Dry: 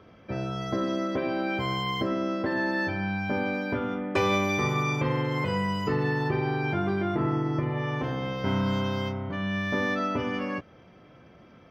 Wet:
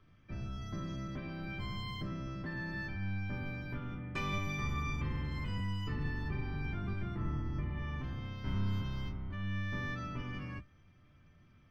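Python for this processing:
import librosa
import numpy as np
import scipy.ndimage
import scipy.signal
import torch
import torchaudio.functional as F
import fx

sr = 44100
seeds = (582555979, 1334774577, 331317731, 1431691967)

y = fx.octave_divider(x, sr, octaves=1, level_db=4.0)
y = fx.peak_eq(y, sr, hz=550.0, db=-14.0, octaves=1.2)
y = fx.comb_fb(y, sr, f0_hz=600.0, decay_s=0.24, harmonics='all', damping=0.0, mix_pct=80)
y = y * 10.0 ** (1.0 / 20.0)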